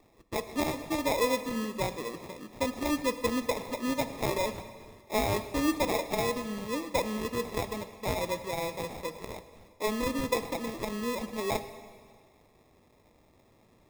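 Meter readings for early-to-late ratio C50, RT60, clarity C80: 11.5 dB, 1.8 s, 12.5 dB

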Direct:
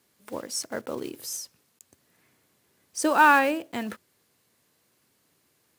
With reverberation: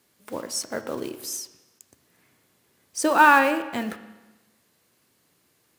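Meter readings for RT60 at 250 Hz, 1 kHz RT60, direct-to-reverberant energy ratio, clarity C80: 1.1 s, 1.1 s, 9.0 dB, 13.5 dB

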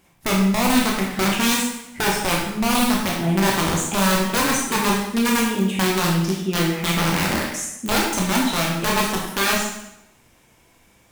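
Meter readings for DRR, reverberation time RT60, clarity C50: -3.0 dB, 0.85 s, 2.0 dB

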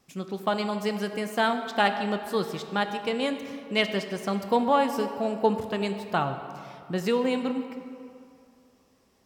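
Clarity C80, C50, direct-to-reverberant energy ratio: 9.0 dB, 8.5 dB, 7.0 dB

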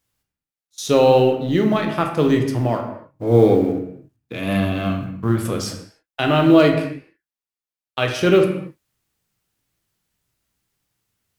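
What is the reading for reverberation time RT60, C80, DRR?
no single decay rate, 9.0 dB, 3.0 dB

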